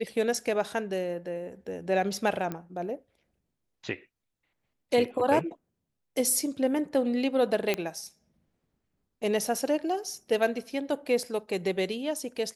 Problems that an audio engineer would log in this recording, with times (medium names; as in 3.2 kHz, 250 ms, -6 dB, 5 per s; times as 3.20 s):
2.52 s: pop -20 dBFS
7.74 s: pop -12 dBFS